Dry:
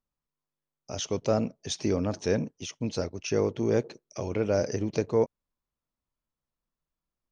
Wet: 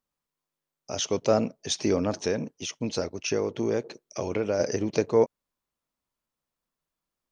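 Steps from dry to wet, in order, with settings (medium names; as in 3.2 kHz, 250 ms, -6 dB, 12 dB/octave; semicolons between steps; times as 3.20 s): bass shelf 140 Hz -11 dB; 2.22–4.60 s: compression, threshold -27 dBFS, peak gain reduction 6.5 dB; trim +4.5 dB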